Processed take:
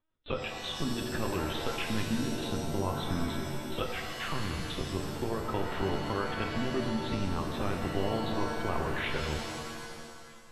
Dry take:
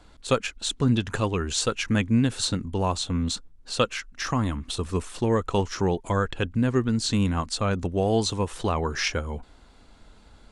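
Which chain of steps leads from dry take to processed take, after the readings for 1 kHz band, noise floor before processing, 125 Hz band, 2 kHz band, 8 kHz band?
−5.0 dB, −53 dBFS, −9.0 dB, −4.0 dB, −12.0 dB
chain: noise gate −37 dBFS, range −26 dB
downward compressor 6 to 1, threshold −25 dBFS, peak gain reduction 9 dB
delay with a high-pass on its return 631 ms, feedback 40%, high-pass 1,600 Hz, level −22.5 dB
linear-prediction vocoder at 8 kHz pitch kept
reverb with rising layers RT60 1.9 s, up +7 semitones, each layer −2 dB, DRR 3 dB
level −5 dB

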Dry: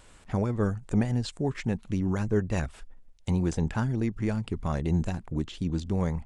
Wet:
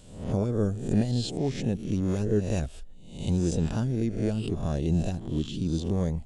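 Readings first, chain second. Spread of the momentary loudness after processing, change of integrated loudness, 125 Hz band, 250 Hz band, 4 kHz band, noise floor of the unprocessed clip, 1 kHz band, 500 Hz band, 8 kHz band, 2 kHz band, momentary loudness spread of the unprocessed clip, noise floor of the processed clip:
5 LU, +1.0 dB, +1.0 dB, +1.0 dB, +4.0 dB, −54 dBFS, −4.0 dB, +2.0 dB, +4.0 dB, −5.5 dB, 5 LU, −45 dBFS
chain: peak hold with a rise ahead of every peak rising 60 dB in 0.62 s
flat-topped bell 1,400 Hz −10.5 dB

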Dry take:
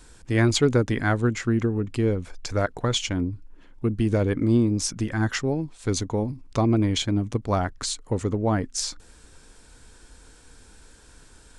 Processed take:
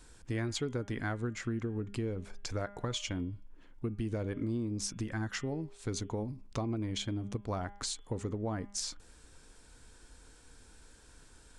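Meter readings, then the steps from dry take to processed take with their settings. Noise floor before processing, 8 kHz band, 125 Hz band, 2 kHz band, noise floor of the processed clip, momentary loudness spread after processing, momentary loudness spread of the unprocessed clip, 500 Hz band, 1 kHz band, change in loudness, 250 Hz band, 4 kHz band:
−52 dBFS, −9.5 dB, −12.5 dB, −12.0 dB, −58 dBFS, 4 LU, 8 LU, −13.0 dB, −12.5 dB, −12.5 dB, −13.0 dB, −10.5 dB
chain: hum removal 202.1 Hz, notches 17
downward compressor 4 to 1, threshold −26 dBFS, peak gain reduction 10.5 dB
level −6.5 dB

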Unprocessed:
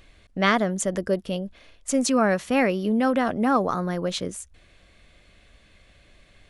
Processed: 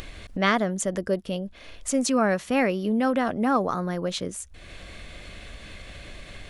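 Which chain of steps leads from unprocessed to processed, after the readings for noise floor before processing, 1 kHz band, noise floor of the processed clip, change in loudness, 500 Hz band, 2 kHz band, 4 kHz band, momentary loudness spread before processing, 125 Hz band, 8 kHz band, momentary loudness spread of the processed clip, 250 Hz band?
−57 dBFS, −1.5 dB, −46 dBFS, −1.5 dB, −1.5 dB, −1.5 dB, −1.0 dB, 12 LU, −1.0 dB, −1.0 dB, 20 LU, −1.5 dB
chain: upward compression, threshold −25 dBFS
level −1.5 dB

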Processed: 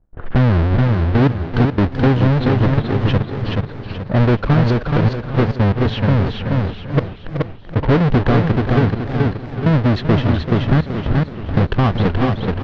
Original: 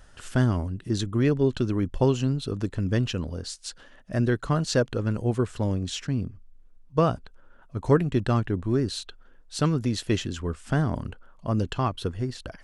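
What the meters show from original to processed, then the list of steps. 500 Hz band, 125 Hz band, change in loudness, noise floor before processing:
+7.0 dB, +11.5 dB, +9.5 dB, −53 dBFS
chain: each half-wave held at its own peak
leveller curve on the samples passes 2
inverse Chebyshev low-pass filter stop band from 9,600 Hz, stop band 50 dB
low-pass that shuts in the quiet parts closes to 920 Hz, open at −12.5 dBFS
gate pattern ".xxxxxx..x..x.x" 118 BPM −24 dB
tilt shelving filter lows +5 dB, about 1,200 Hz
repeating echo 427 ms, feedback 38%, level −5 dB
downward compressor 2 to 1, threshold −14 dBFS, peak gain reduction 5.5 dB
parametric band 1,700 Hz +3.5 dB 0.71 octaves
feedback echo with a swinging delay time 381 ms, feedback 37%, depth 168 cents, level −10.5 dB

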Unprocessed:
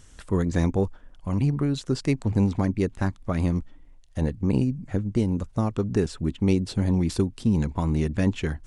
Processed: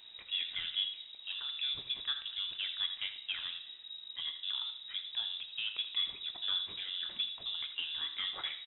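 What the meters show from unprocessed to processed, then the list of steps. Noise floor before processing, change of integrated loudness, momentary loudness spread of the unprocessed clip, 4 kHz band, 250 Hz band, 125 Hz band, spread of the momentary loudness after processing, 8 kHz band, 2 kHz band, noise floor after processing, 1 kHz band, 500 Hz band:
−51 dBFS, −10.5 dB, 6 LU, +12.0 dB, below −40 dB, below −40 dB, 5 LU, below −35 dB, −4.5 dB, −52 dBFS, −17.0 dB, below −35 dB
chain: gain on one half-wave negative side −3 dB
high-pass filter 300 Hz 24 dB per octave
de-essing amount 80%
notch filter 1,600 Hz, Q 23
mid-hump overdrive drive 14 dB, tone 1,600 Hz, clips at −15 dBFS
background noise brown −43 dBFS
single-tap delay 80 ms −12.5 dB
dense smooth reverb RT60 0.77 s, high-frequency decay 0.8×, DRR 8.5 dB
voice inversion scrambler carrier 3,800 Hz
level −9 dB

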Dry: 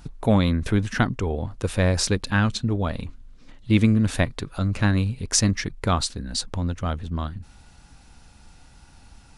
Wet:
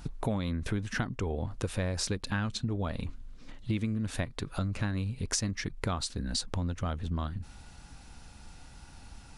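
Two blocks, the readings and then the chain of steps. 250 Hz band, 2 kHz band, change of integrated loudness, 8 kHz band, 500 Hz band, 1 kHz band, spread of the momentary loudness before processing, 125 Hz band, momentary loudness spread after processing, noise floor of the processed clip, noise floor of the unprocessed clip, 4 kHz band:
−11.0 dB, −9.5 dB, −10.0 dB, −9.0 dB, −10.0 dB, −10.0 dB, 9 LU, −9.5 dB, 20 LU, −51 dBFS, −51 dBFS, −8.0 dB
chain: downward compressor 6 to 1, threshold −29 dBFS, peak gain reduction 15 dB

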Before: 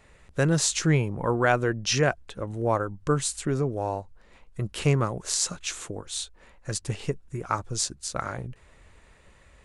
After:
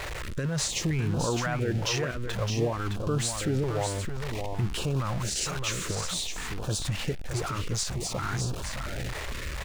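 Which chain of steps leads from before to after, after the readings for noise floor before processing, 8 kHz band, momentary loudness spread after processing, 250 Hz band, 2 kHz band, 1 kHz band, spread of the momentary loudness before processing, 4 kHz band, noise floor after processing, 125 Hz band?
−57 dBFS, −2.5 dB, 7 LU, −2.5 dB, −3.0 dB, −4.5 dB, 13 LU, +0.5 dB, −35 dBFS, −0.5 dB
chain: converter with a step at zero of −28.5 dBFS
high-shelf EQ 7,900 Hz −11 dB
brickwall limiter −19.5 dBFS, peak gain reduction 10.5 dB
single-tap delay 614 ms −6 dB
notch on a step sequencer 4.4 Hz 220–2,000 Hz

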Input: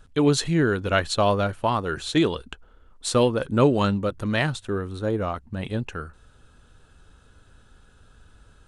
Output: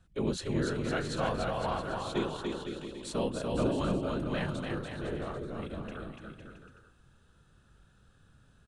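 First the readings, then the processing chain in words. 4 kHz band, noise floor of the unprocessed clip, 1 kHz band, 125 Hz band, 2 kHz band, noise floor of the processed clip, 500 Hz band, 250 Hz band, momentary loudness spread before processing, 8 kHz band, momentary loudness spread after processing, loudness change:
−11.0 dB, −55 dBFS, −9.5 dB, −10.0 dB, −10.5 dB, −64 dBFS, −10.0 dB, −9.5 dB, 11 LU, −12.0 dB, 10 LU, −10.0 dB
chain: random phases in short frames
bouncing-ball delay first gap 290 ms, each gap 0.75×, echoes 5
harmonic and percussive parts rebalanced percussive −7 dB
level −8.5 dB

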